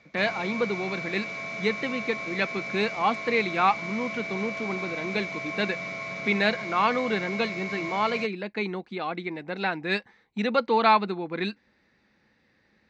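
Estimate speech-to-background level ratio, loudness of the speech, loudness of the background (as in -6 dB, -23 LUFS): 5.0 dB, -28.0 LUFS, -33.0 LUFS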